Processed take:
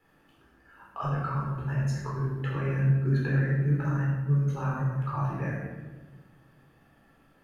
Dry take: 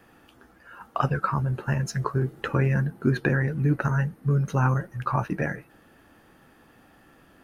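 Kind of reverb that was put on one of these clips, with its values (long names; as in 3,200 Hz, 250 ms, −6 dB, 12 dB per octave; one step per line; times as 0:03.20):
rectangular room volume 850 cubic metres, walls mixed, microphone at 4.1 metres
level −15.5 dB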